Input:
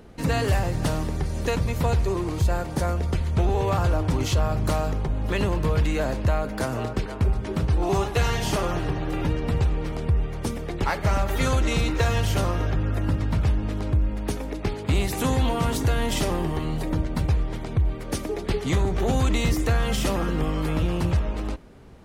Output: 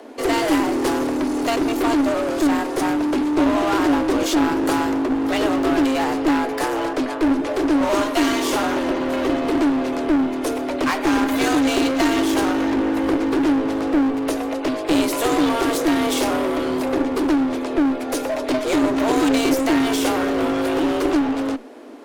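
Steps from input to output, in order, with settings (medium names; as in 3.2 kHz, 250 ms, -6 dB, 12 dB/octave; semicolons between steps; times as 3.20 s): frequency shift +220 Hz; Chebyshev shaper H 6 -19 dB, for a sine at -10.5 dBFS; one-sided clip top -28.5 dBFS; trim +7.5 dB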